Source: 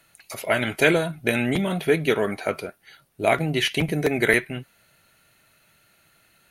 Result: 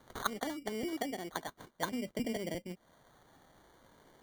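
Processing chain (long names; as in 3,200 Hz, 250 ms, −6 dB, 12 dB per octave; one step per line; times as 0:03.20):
gliding playback speed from 195% → 113%
treble cut that deepens with the level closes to 340 Hz, closed at −19.5 dBFS
high-shelf EQ 2,200 Hz +11 dB
decimation without filtering 17×
level −9 dB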